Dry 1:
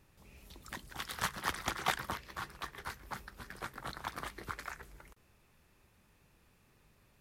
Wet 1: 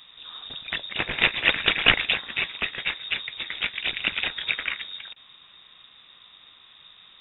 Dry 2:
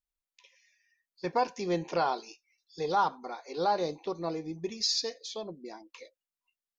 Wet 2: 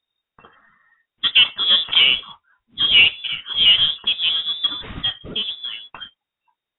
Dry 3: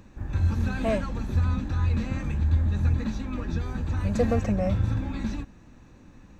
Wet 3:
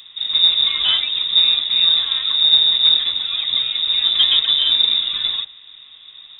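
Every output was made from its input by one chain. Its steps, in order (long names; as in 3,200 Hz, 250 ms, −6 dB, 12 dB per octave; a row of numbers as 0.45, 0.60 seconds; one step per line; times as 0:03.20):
noise that follows the level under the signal 17 dB
voice inversion scrambler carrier 3,700 Hz
normalise the peak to −2 dBFS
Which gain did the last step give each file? +15.0, +14.0, +7.0 decibels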